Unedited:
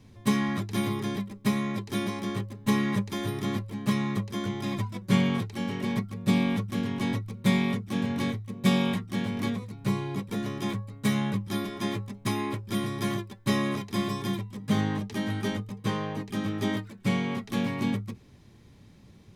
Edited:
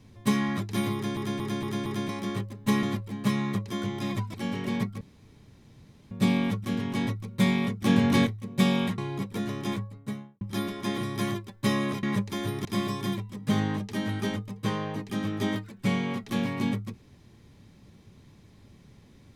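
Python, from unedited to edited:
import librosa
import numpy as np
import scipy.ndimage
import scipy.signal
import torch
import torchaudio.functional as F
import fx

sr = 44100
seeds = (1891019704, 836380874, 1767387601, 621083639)

y = fx.studio_fade_out(x, sr, start_s=10.67, length_s=0.71)
y = fx.edit(y, sr, fx.stutter_over(start_s=0.94, slice_s=0.23, count=5),
    fx.move(start_s=2.83, length_s=0.62, to_s=13.86),
    fx.cut(start_s=4.96, length_s=0.54),
    fx.insert_room_tone(at_s=6.17, length_s=1.1),
    fx.clip_gain(start_s=7.88, length_s=0.45, db=7.0),
    fx.cut(start_s=9.04, length_s=0.91),
    fx.cut(start_s=11.95, length_s=0.86), tone=tone)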